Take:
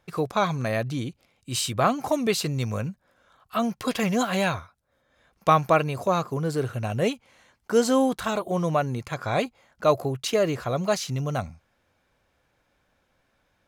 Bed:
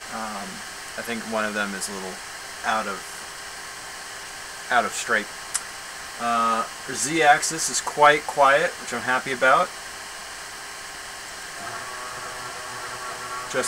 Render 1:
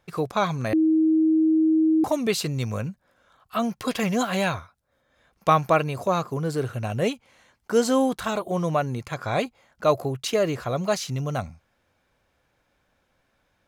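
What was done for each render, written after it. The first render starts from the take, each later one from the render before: 0.73–2.04 s: bleep 317 Hz -16 dBFS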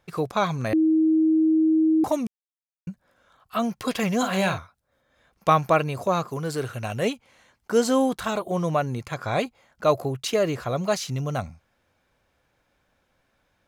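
2.27–2.87 s: mute; 4.18–4.58 s: doubling 47 ms -8 dB; 6.28–7.05 s: tilt shelf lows -3.5 dB, about 780 Hz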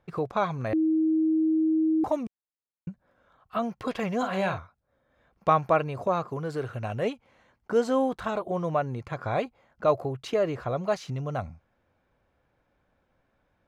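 low-pass 1.2 kHz 6 dB/octave; dynamic bell 200 Hz, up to -6 dB, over -34 dBFS, Q 0.74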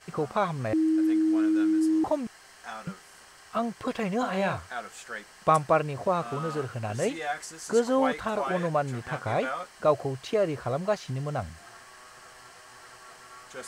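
add bed -16 dB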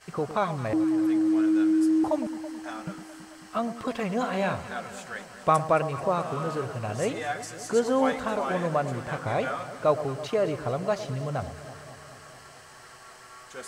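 echo whose repeats swap between lows and highs 109 ms, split 990 Hz, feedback 83%, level -12 dB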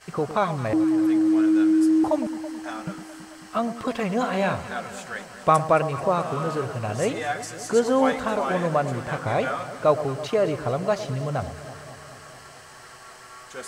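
trim +3.5 dB

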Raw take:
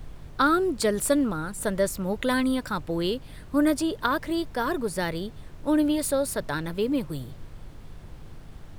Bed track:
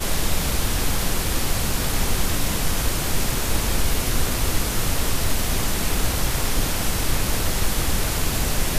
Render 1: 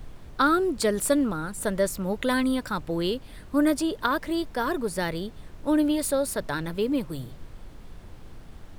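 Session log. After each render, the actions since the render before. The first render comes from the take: de-hum 50 Hz, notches 3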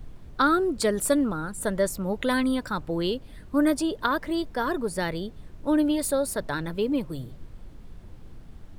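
noise reduction 6 dB, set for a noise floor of -46 dBFS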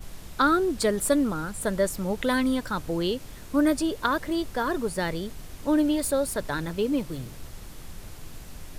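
add bed track -23 dB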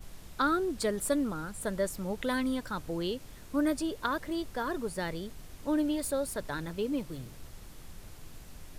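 trim -6.5 dB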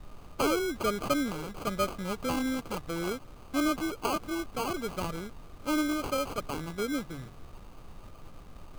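sample-and-hold 24×; small resonant body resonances 1.2/3.7 kHz, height 10 dB, ringing for 35 ms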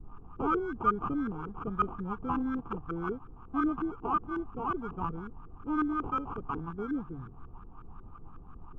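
LFO low-pass saw up 5.5 Hz 400–1500 Hz; static phaser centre 2.9 kHz, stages 8

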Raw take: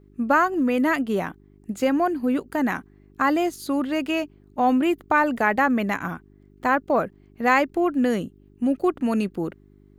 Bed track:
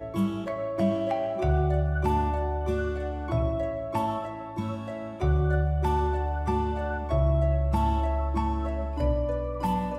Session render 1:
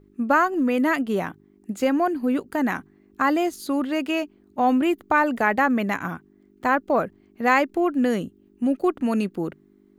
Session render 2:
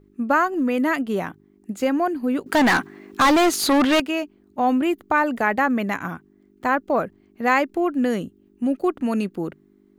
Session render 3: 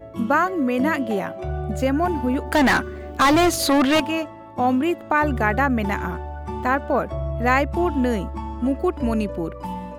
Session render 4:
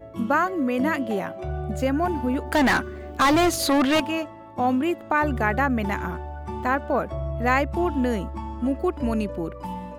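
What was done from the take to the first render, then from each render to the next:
de-hum 50 Hz, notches 3
2.46–4.00 s: overdrive pedal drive 27 dB, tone 6 kHz, clips at -9.5 dBFS
add bed track -3.5 dB
trim -2.5 dB

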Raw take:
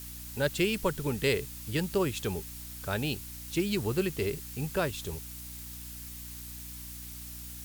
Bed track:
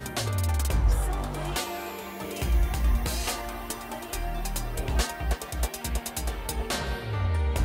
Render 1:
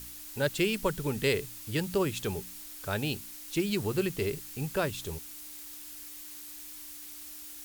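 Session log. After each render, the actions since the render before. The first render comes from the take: de-hum 60 Hz, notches 4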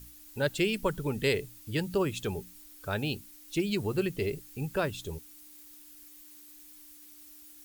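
noise reduction 10 dB, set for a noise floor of -45 dBFS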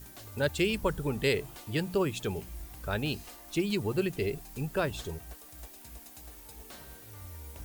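add bed track -20 dB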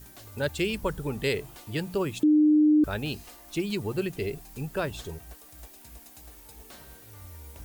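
2.23–2.84 s: bleep 303 Hz -16 dBFS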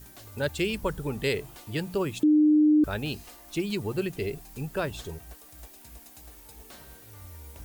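no audible change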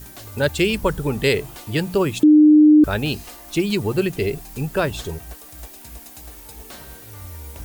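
trim +9 dB

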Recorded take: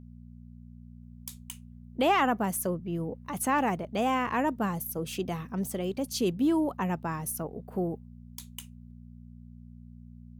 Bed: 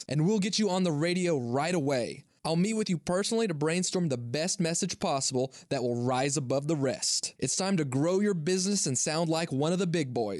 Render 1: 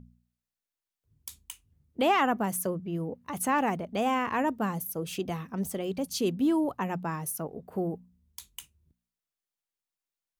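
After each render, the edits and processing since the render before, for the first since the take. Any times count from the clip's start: de-hum 60 Hz, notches 4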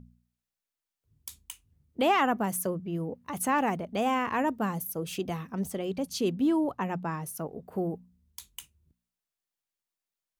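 5.59–7.35 s: low-pass 8.5 kHz -> 5.1 kHz 6 dB/octave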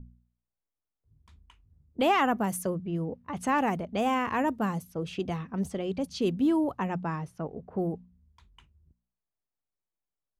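level-controlled noise filter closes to 990 Hz, open at -25.5 dBFS; bass shelf 76 Hz +11 dB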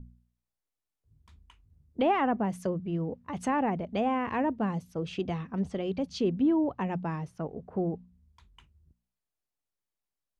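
low-pass that closes with the level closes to 1.9 kHz, closed at -23 dBFS; dynamic bell 1.3 kHz, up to -6 dB, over -44 dBFS, Q 1.9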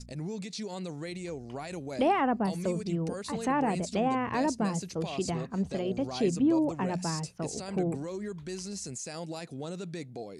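add bed -10.5 dB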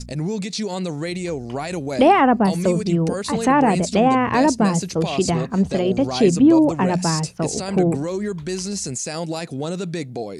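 trim +12 dB

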